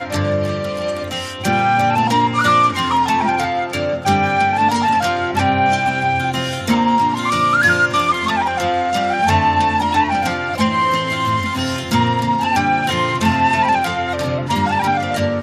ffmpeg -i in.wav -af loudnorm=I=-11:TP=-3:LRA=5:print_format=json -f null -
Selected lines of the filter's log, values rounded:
"input_i" : "-16.8",
"input_tp" : "-2.8",
"input_lra" : "1.4",
"input_thresh" : "-26.8",